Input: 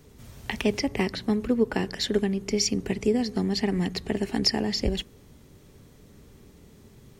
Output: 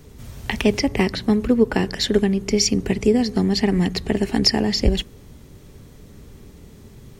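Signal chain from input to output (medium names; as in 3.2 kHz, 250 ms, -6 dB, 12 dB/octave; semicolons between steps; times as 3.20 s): bass shelf 93 Hz +6 dB; trim +6 dB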